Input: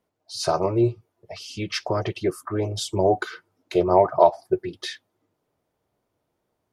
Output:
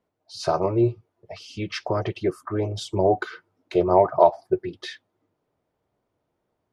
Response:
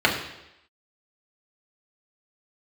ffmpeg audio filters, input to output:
-af "aemphasis=mode=reproduction:type=50kf"

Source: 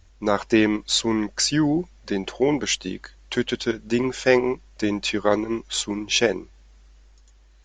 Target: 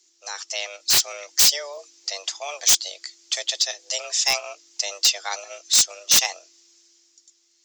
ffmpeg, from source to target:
ffmpeg -i in.wav -af "equalizer=frequency=5200:width=1.1:gain=13,afreqshift=290,aderivative,aeval=exprs='0.188*(abs(mod(val(0)/0.188+3,4)-2)-1)':channel_layout=same,dynaudnorm=framelen=110:gausssize=17:maxgain=6dB" out.wav

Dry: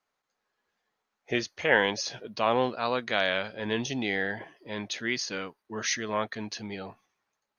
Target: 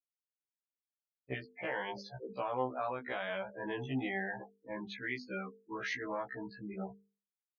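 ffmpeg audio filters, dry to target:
ffmpeg -i in.wav -af "adynamicsmooth=sensitivity=7:basefreq=1400,adynamicequalizer=threshold=0.01:dfrequency=900:dqfactor=1.6:tfrequency=900:tqfactor=1.6:attack=5:release=100:ratio=0.375:range=3:mode=boostabove:tftype=bell,afftfilt=real='re*gte(hypot(re,im),0.0316)':imag='im*gte(hypot(re,im),0.0316)':win_size=1024:overlap=0.75,lowpass=2700,alimiter=limit=-17.5dB:level=0:latency=1:release=129,bandreject=frequency=50:width_type=h:width=6,bandreject=frequency=100:width_type=h:width=6,bandreject=frequency=150:width_type=h:width=6,bandreject=frequency=200:width_type=h:width=6,bandreject=frequency=250:width_type=h:width=6,bandreject=frequency=300:width_type=h:width=6,bandreject=frequency=350:width_type=h:width=6,bandreject=frequency=400:width_type=h:width=6,bandreject=frequency=450:width_type=h:width=6,acompressor=threshold=-36dB:ratio=2,afftfilt=real='re*1.73*eq(mod(b,3),0)':imag='im*1.73*eq(mod(b,3),0)':win_size=2048:overlap=0.75,volume=1.5dB" out.wav

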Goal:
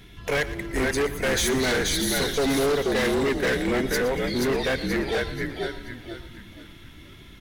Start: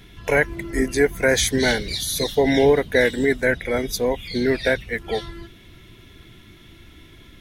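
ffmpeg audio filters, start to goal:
ffmpeg -i in.wav -filter_complex "[0:a]asplit=2[link_01][link_02];[link_02]asplit=5[link_03][link_04][link_05][link_06][link_07];[link_03]adelay=481,afreqshift=-51,volume=-4dB[link_08];[link_04]adelay=962,afreqshift=-102,volume=-12.9dB[link_09];[link_05]adelay=1443,afreqshift=-153,volume=-21.7dB[link_10];[link_06]adelay=1924,afreqshift=-204,volume=-30.6dB[link_11];[link_07]adelay=2405,afreqshift=-255,volume=-39.5dB[link_12];[link_08][link_09][link_10][link_11][link_12]amix=inputs=5:normalize=0[link_13];[link_01][link_13]amix=inputs=2:normalize=0,volume=19dB,asoftclip=hard,volume=-19dB,asplit=2[link_14][link_15];[link_15]aecho=0:1:117|234|351|468|585:0.178|0.0942|0.05|0.0265|0.014[link_16];[link_14][link_16]amix=inputs=2:normalize=0,volume=-1.5dB" out.wav

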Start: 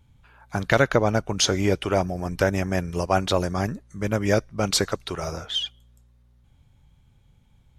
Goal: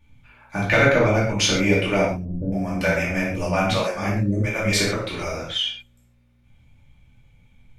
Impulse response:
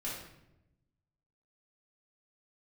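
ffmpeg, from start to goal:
-filter_complex "[0:a]equalizer=frequency=2300:width_type=o:width=0.38:gain=11.5,asettb=1/sr,asplit=3[link_01][link_02][link_03];[link_01]atrim=end=2.104[link_04];[link_02]atrim=start=2.1:end=4.73,asetpts=PTS-STARTPTS,afade=type=in:duration=0.004:curve=qsin,afade=type=out:start_time=2.626:duration=0.004:curve=qsin,acrossover=split=370[link_05][link_06];[link_06]adelay=420[link_07];[link_05][link_07]amix=inputs=2:normalize=0,atrim=end_sample=115983[link_08];[link_03]atrim=start=4.726[link_09];[link_04][link_08]acrossfade=duration=0.004:curve1=hsin:curve2=qsin[link_10];[link_10][link_09]acrossfade=duration=0.004:curve1=qsin:curve2=hsin[link_11];[1:a]atrim=start_sample=2205,afade=type=out:start_time=0.2:duration=0.01,atrim=end_sample=9261[link_12];[link_11][link_12]afir=irnorm=-1:irlink=0"

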